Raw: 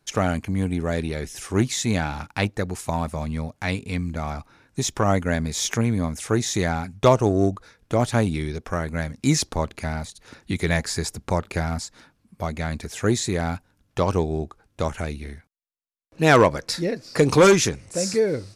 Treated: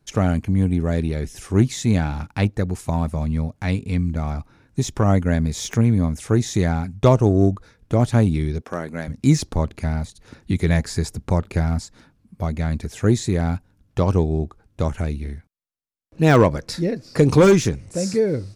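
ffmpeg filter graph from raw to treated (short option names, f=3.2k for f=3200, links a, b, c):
-filter_complex "[0:a]asettb=1/sr,asplit=3[a][b][c];[a]atrim=end=8.624[d];[b]atrim=start=8.62:end=9.08,asetpts=PTS-STARTPTS,afade=t=in:d=0.004:c=qsin,afade=t=out:st=0.456:d=0.004:c=qsin,highpass=250,asoftclip=type=hard:threshold=-13dB[e];[c]atrim=start=9.076[f];[d][e]acrossfade=d=0.004:c1=hsin:c2=qsin[g];[g][f]acrossfade=d=0.004:c1=qsin:c2=hsin,deesser=0.4,lowshelf=f=370:g=11,volume=-3.5dB"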